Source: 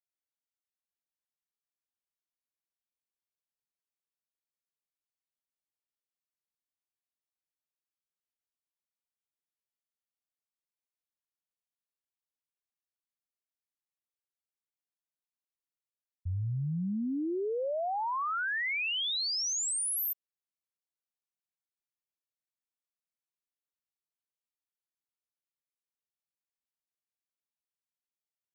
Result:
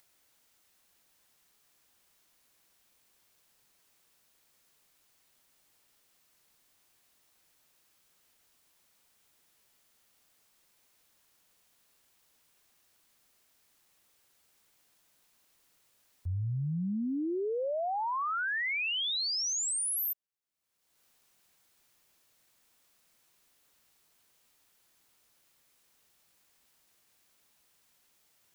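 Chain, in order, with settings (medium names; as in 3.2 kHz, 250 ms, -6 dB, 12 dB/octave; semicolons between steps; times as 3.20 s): upward compressor, threshold -48 dBFS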